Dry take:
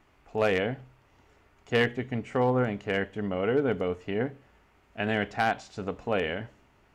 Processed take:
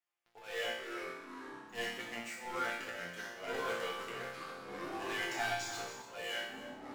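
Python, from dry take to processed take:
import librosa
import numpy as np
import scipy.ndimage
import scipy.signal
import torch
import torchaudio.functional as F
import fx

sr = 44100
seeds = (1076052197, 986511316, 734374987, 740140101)

y = scipy.signal.sosfilt(scipy.signal.butter(2, 400.0, 'highpass', fs=sr, output='sos'), x)
y = fx.tilt_eq(y, sr, slope=4.0)
y = fx.leveller(y, sr, passes=5)
y = fx.auto_swell(y, sr, attack_ms=289.0)
y = fx.resonator_bank(y, sr, root=46, chord='fifth', decay_s=0.7)
y = y + 10.0 ** (-13.5 / 20.0) * np.pad(y, (int(283 * sr / 1000.0), 0))[:len(y)]
y = fx.echo_pitch(y, sr, ms=153, semitones=-5, count=3, db_per_echo=-6.0)
y = fx.band_squash(y, sr, depth_pct=40, at=(3.54, 6.02))
y = y * 10.0 ** (-2.0 / 20.0)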